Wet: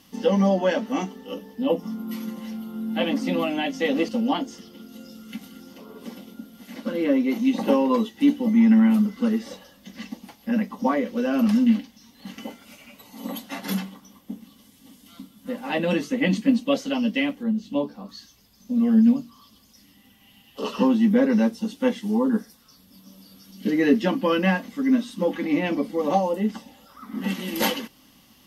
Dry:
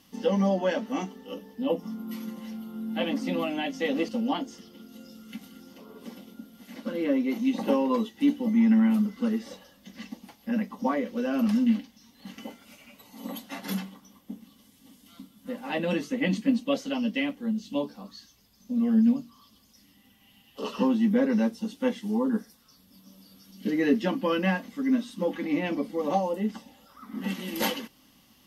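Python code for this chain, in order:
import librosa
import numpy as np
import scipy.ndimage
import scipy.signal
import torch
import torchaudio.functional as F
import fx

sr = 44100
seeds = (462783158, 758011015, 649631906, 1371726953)

y = fx.peak_eq(x, sr, hz=8200.0, db=-8.0, octaves=2.9, at=(17.43, 18.09))
y = F.gain(torch.from_numpy(y), 4.5).numpy()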